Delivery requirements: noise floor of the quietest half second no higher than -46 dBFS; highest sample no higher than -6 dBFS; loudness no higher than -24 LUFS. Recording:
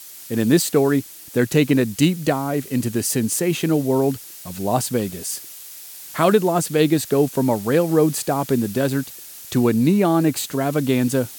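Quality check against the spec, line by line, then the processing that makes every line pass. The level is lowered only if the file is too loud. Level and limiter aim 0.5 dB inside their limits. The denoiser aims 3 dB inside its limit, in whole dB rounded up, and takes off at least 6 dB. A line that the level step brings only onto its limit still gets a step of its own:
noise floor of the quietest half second -38 dBFS: fail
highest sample -3.5 dBFS: fail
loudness -20.0 LUFS: fail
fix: noise reduction 7 dB, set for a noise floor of -38 dBFS; trim -4.5 dB

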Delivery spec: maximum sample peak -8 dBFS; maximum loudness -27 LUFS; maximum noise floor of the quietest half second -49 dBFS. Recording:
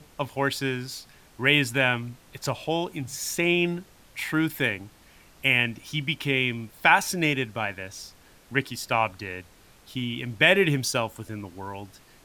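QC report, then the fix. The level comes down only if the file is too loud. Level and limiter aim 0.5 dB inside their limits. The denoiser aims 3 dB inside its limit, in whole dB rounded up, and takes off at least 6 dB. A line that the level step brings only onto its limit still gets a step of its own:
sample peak -4.5 dBFS: fail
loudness -25.0 LUFS: fail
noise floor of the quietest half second -54 dBFS: pass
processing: trim -2.5 dB; peak limiter -8.5 dBFS

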